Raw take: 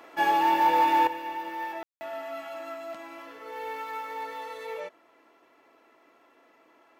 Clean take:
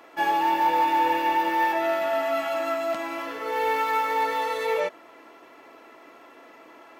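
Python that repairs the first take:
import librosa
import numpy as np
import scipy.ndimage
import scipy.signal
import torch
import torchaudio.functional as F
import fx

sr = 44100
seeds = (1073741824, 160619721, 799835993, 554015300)

y = fx.fix_ambience(x, sr, seeds[0], print_start_s=5.07, print_end_s=5.57, start_s=1.83, end_s=2.01)
y = fx.fix_level(y, sr, at_s=1.07, step_db=11.5)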